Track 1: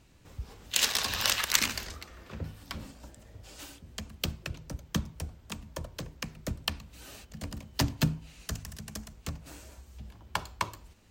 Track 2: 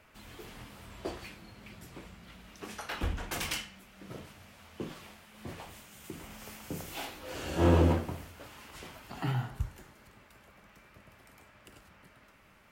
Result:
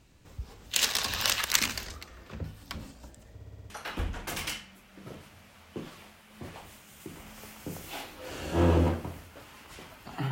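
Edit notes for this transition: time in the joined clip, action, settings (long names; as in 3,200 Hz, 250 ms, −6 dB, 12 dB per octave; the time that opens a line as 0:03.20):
track 1
0:03.34: stutter in place 0.06 s, 6 plays
0:03.70: continue with track 2 from 0:02.74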